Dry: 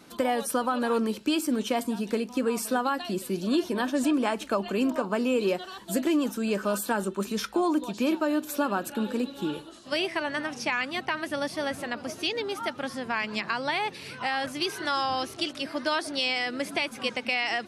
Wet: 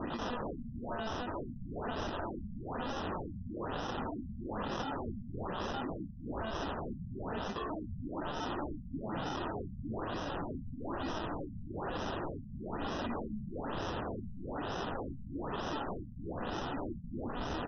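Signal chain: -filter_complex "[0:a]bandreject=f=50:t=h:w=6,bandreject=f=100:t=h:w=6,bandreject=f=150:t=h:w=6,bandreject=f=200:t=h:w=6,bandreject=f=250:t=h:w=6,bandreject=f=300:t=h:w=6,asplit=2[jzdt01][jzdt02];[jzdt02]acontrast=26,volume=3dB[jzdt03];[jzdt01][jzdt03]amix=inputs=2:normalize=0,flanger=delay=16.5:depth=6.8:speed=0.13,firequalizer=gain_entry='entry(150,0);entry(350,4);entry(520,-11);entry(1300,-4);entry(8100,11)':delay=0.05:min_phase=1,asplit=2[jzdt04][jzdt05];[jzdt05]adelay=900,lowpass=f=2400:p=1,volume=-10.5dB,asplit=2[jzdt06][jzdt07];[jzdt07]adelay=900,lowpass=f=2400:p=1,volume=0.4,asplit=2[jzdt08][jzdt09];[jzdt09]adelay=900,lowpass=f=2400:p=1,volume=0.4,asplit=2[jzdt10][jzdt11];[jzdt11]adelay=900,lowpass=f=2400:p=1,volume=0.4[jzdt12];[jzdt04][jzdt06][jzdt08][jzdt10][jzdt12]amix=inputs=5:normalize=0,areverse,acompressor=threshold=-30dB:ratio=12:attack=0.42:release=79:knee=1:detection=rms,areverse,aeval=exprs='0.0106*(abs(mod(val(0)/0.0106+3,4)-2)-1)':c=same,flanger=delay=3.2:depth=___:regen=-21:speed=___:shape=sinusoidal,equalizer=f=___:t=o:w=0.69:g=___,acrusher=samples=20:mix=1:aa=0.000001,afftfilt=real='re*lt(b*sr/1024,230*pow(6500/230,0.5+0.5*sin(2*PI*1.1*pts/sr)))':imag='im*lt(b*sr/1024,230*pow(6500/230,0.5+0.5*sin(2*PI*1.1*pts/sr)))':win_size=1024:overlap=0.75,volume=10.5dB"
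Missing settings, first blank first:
7, 0.46, 80, 7.5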